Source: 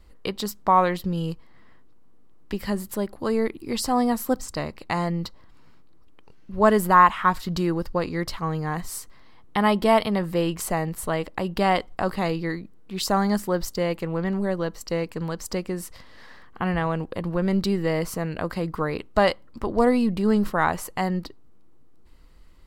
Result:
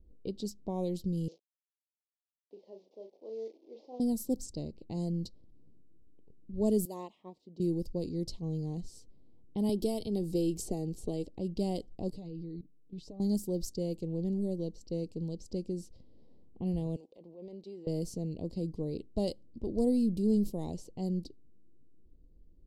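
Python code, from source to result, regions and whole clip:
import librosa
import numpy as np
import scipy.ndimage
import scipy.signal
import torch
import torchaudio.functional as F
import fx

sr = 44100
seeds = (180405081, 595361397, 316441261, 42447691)

y = fx.chain(x, sr, fx.delta_mod(bps=32000, step_db=-33.5),
    fx.ladder_highpass(hz=430.0, resonance_pct=30),
    fx.doubler(ms=36.0, db=-6.0), at=(1.28, 4.0))
y = fx.chain(y, sr, fx.highpass(hz=380.0, slope=12),
    fx.upward_expand(threshold_db=-24.0, expansion=1.5), at=(6.85, 7.6))
y = fx.chain(y, sr, fx.comb(ms=2.6, depth=0.32),
    fx.band_squash(depth_pct=70), at=(9.69, 11.25))
y = fx.chain(y, sr, fx.comb(ms=6.8, depth=0.61),
    fx.level_steps(step_db=17), at=(12.1, 13.2))
y = fx.chain(y, sr, fx.highpass(hz=720.0, slope=12),
    fx.transient(attack_db=-6, sustain_db=5), at=(16.96, 17.87))
y = scipy.signal.sosfilt(scipy.signal.cheby1(2, 1.0, [370.0, 5600.0], 'bandstop', fs=sr, output='sos'), y)
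y = fx.env_lowpass(y, sr, base_hz=1200.0, full_db=-22.5)
y = y * 10.0 ** (-6.0 / 20.0)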